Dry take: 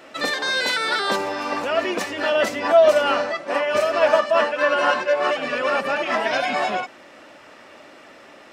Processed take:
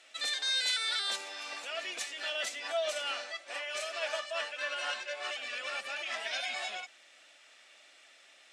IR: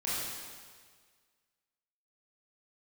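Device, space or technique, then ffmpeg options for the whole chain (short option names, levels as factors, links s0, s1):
car door speaker: -filter_complex "[0:a]highpass=91,equalizer=f=700:t=q:w=4:g=4,equalizer=f=1000:t=q:w=4:g=-6,equalizer=f=2300:t=q:w=4:g=3,equalizer=f=3500:t=q:w=4:g=5,equalizer=f=5200:t=q:w=4:g=-3,lowpass=f=9300:w=0.5412,lowpass=f=9300:w=1.3066,asettb=1/sr,asplit=3[s0][s1][s2];[s0]atrim=end=3.304[s3];[s1]atrim=start=3.3:end=4.9,asetpts=PTS-STARTPTS,afade=t=in:d=0.004:c=qsin,afade=t=out:st=1.596:d=0.004:c=qsin,highpass=220[s4];[s2]atrim=start=4.896[s5];[s3][s4]acrossfade=d=0.004:c1=hsin:c2=qsin[s6];[s6][s5]acrossfade=d=0.004:c1=qsin:c2=hsin,aderivative,volume=0.794"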